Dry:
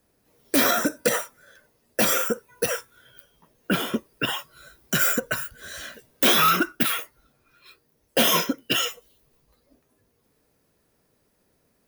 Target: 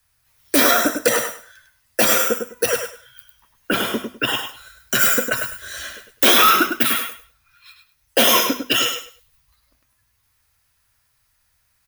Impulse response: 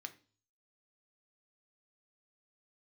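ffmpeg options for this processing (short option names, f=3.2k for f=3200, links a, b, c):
-filter_complex "[0:a]equalizer=f=170:t=o:w=0.39:g=-15,bandreject=f=50:t=h:w=6,bandreject=f=100:t=h:w=6,bandreject=f=150:t=h:w=6,bandreject=f=200:t=h:w=6,bandreject=f=250:t=h:w=6,acrossover=split=150|960|1900[a][b][c][d];[b]aeval=exprs='sgn(val(0))*max(abs(val(0))-0.00168,0)':c=same[e];[a][e][c][d]amix=inputs=4:normalize=0,aecho=1:1:102|204|306:0.473|0.0994|0.0209,volume=5dB"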